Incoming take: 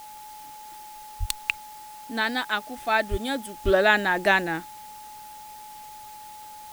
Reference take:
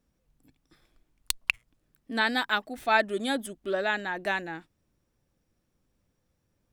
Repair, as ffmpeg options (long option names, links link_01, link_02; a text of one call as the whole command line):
ffmpeg -i in.wav -filter_complex "[0:a]bandreject=frequency=850:width=30,asplit=3[link_01][link_02][link_03];[link_01]afade=type=out:start_time=1.19:duration=0.02[link_04];[link_02]highpass=frequency=140:width=0.5412,highpass=frequency=140:width=1.3066,afade=type=in:start_time=1.19:duration=0.02,afade=type=out:start_time=1.31:duration=0.02[link_05];[link_03]afade=type=in:start_time=1.31:duration=0.02[link_06];[link_04][link_05][link_06]amix=inputs=3:normalize=0,asplit=3[link_07][link_08][link_09];[link_07]afade=type=out:start_time=3.1:duration=0.02[link_10];[link_08]highpass=frequency=140:width=0.5412,highpass=frequency=140:width=1.3066,afade=type=in:start_time=3.1:duration=0.02,afade=type=out:start_time=3.22:duration=0.02[link_11];[link_09]afade=type=in:start_time=3.22:duration=0.02[link_12];[link_10][link_11][link_12]amix=inputs=3:normalize=0,asplit=3[link_13][link_14][link_15];[link_13]afade=type=out:start_time=3.64:duration=0.02[link_16];[link_14]highpass=frequency=140:width=0.5412,highpass=frequency=140:width=1.3066,afade=type=in:start_time=3.64:duration=0.02,afade=type=out:start_time=3.76:duration=0.02[link_17];[link_15]afade=type=in:start_time=3.76:duration=0.02[link_18];[link_16][link_17][link_18]amix=inputs=3:normalize=0,afwtdn=0.0035,asetnsamples=nb_out_samples=441:pad=0,asendcmd='3.54 volume volume -9dB',volume=0dB" out.wav